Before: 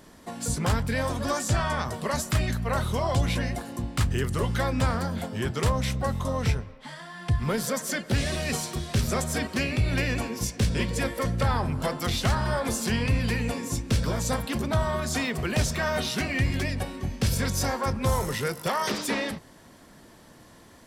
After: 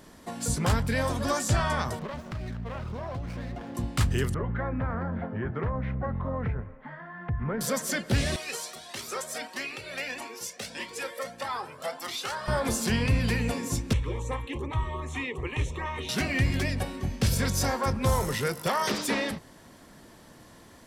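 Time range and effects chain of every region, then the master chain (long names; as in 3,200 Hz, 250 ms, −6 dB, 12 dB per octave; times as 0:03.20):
0:01.99–0:03.75: downward compressor, threshold −31 dBFS + high-frequency loss of the air 180 metres + windowed peak hold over 9 samples
0:04.34–0:07.61: Chebyshev low-pass filter 1,800 Hz, order 3 + downward compressor 3 to 1, threshold −27 dBFS
0:08.36–0:12.48: high-pass filter 450 Hz + double-tracking delay 30 ms −13 dB + flanger whose copies keep moving one way rising 1.6 Hz
0:13.93–0:16.09: auto-filter notch saw up 2.6 Hz 270–4,100 Hz + high-frequency loss of the air 98 metres + phaser with its sweep stopped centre 990 Hz, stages 8
whole clip: no processing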